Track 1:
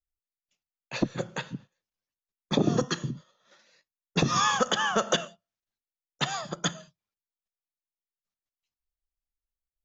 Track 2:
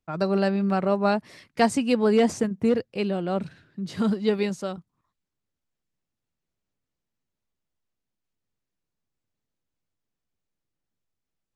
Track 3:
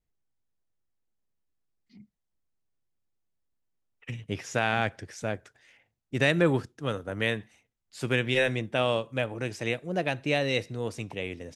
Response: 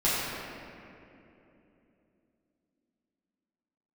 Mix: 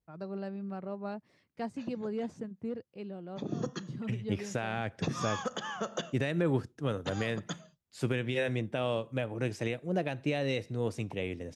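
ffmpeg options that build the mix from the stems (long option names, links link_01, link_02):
-filter_complex "[0:a]adelay=850,volume=-10.5dB[link_01];[1:a]deesser=0.65,highshelf=frequency=7300:gain=-10,volume=-17.5dB,asplit=2[link_02][link_03];[2:a]alimiter=limit=-18.5dB:level=0:latency=1:release=203,volume=-1.5dB[link_04];[link_03]apad=whole_len=471749[link_05];[link_01][link_05]sidechaincompress=threshold=-48dB:ratio=6:attack=30:release=297[link_06];[link_06][link_02][link_04]amix=inputs=3:normalize=0,highpass=50,tiltshelf=frequency=760:gain=3"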